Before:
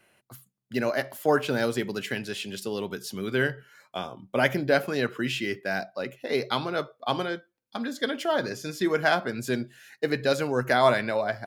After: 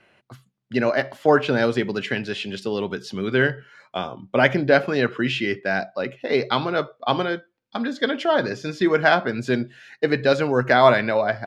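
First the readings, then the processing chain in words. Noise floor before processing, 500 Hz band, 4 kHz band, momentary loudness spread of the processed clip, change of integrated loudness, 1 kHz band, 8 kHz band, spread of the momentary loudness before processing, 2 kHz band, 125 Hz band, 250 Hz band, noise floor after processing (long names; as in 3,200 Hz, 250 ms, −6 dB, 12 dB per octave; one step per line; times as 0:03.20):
−73 dBFS, +6.0 dB, +4.0 dB, 11 LU, +6.0 dB, +6.0 dB, can't be measured, 11 LU, +6.0 dB, +6.0 dB, +6.0 dB, −67 dBFS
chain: low-pass filter 4,100 Hz 12 dB per octave
level +6 dB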